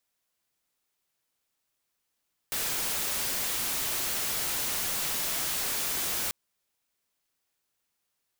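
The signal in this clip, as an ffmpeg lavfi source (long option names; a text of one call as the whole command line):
ffmpeg -f lavfi -i "anoisesrc=color=white:amplitude=0.0517:duration=3.79:sample_rate=44100:seed=1" out.wav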